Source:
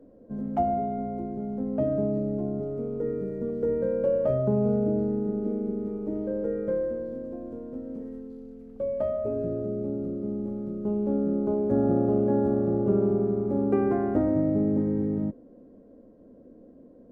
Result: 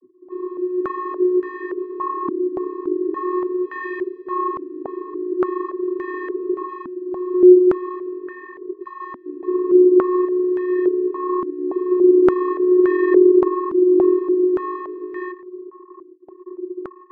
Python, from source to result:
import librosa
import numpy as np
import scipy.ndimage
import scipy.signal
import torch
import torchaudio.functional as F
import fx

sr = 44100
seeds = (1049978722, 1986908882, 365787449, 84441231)

y = fx.fuzz(x, sr, gain_db=42.0, gate_db=-49.0)
y = fx.vocoder(y, sr, bands=32, carrier='square', carrier_hz=363.0)
y = fx.filter_held_lowpass(y, sr, hz=3.5, low_hz=270.0, high_hz=1700.0)
y = y * librosa.db_to_amplitude(-8.0)